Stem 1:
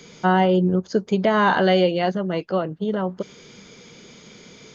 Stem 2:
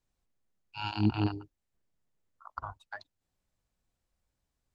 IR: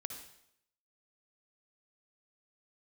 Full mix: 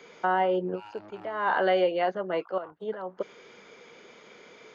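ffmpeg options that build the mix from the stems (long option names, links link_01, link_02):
-filter_complex "[0:a]volume=0.5dB[link_01];[1:a]asoftclip=type=tanh:threshold=-31dB,volume=-5.5dB,asplit=2[link_02][link_03];[link_03]apad=whole_len=209252[link_04];[link_01][link_04]sidechaincompress=threshold=-57dB:ratio=4:attack=9.1:release=244[link_05];[link_05][link_02]amix=inputs=2:normalize=0,acrossover=split=370 2500:gain=0.1 1 0.178[link_06][link_07][link_08];[link_06][link_07][link_08]amix=inputs=3:normalize=0,alimiter=limit=-14.5dB:level=0:latency=1:release=386"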